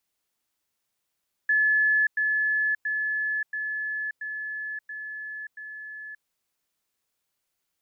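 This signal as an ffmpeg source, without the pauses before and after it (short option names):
-f lavfi -i "aevalsrc='pow(10,(-18.5-3*floor(t/0.68))/20)*sin(2*PI*1720*t)*clip(min(mod(t,0.68),0.58-mod(t,0.68))/0.005,0,1)':d=4.76:s=44100"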